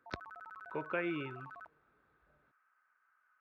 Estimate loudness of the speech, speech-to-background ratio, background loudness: -40.5 LUFS, 10.0 dB, -50.5 LUFS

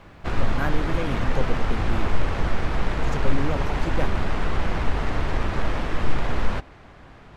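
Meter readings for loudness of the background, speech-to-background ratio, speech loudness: -28.0 LUFS, -4.5 dB, -32.5 LUFS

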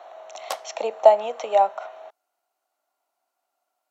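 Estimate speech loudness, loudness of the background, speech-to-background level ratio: -20.5 LUFS, -35.5 LUFS, 15.0 dB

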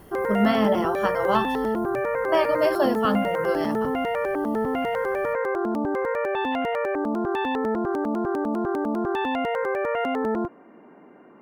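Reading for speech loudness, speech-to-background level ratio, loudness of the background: -25.0 LUFS, 0.5 dB, -25.5 LUFS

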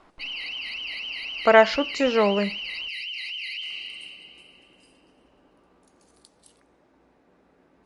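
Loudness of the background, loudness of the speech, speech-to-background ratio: -31.5 LUFS, -21.0 LUFS, 10.5 dB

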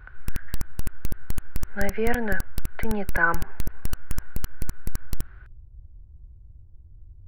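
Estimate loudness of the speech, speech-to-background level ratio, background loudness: -27.5 LUFS, 9.5 dB, -37.0 LUFS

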